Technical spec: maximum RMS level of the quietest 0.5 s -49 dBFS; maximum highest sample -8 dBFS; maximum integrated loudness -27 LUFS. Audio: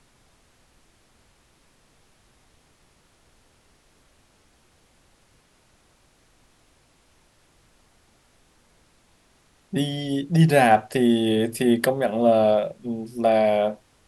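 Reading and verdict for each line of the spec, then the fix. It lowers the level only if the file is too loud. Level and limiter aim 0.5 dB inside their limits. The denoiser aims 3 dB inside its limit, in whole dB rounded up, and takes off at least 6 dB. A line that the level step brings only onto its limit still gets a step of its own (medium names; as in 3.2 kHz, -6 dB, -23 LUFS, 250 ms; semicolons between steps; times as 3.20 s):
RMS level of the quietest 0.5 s -61 dBFS: pass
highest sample -5.5 dBFS: fail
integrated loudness -21.0 LUFS: fail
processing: trim -6.5 dB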